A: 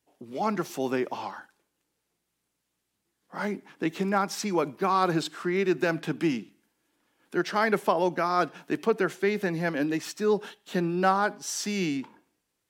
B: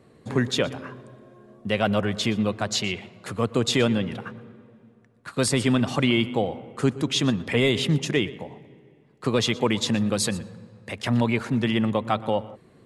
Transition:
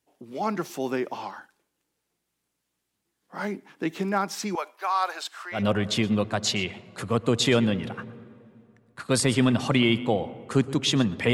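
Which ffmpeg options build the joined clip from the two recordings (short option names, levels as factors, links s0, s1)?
-filter_complex "[0:a]asettb=1/sr,asplit=3[s0][s1][s2];[s0]atrim=end=4.554[s3];[s1]atrim=start=4.55:end=5.65,asetpts=PTS-STARTPTS,afade=t=in:d=0.004:c=qsin,afade=t=out:st=1.096:d=0.004:c=qsin,highpass=f=640:w=0.5412,highpass=f=640:w=1.3066[s4];[s2]atrim=start=5.646[s5];[s3][s4]acrossfade=d=0.004:c1=hsin:c2=qsin[s6];[s6][s5]acrossfade=d=0.004:c1=qsin:c2=hsin,apad=whole_dur=11.33,atrim=end=11.33,atrim=end=5.65,asetpts=PTS-STARTPTS[s7];[1:a]atrim=start=1.79:end=7.61,asetpts=PTS-STARTPTS[s8];[s7][s8]acrossfade=d=0.14:c1=tri:c2=tri"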